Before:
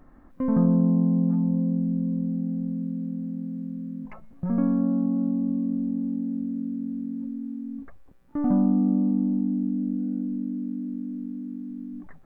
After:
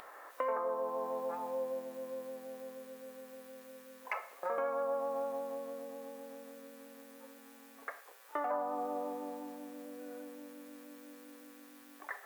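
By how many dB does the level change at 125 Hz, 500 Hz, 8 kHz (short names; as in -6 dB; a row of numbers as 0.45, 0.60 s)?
under -40 dB, +3.0 dB, n/a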